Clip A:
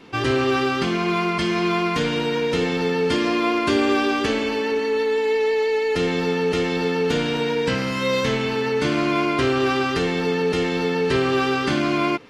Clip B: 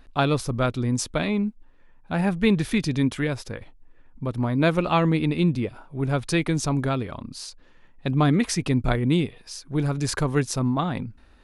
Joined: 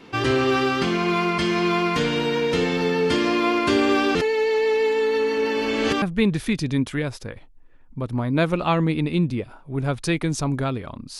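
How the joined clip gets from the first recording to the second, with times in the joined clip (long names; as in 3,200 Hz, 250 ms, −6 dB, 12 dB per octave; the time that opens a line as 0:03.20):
clip A
0:04.15–0:06.02: reverse
0:06.02: continue with clip B from 0:02.27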